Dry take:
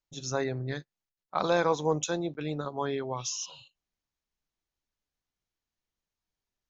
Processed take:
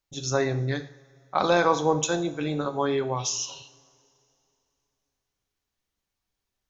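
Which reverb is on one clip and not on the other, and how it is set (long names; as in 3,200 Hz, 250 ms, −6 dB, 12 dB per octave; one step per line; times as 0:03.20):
coupled-rooms reverb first 0.52 s, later 2.9 s, from −22 dB, DRR 7.5 dB
level +5 dB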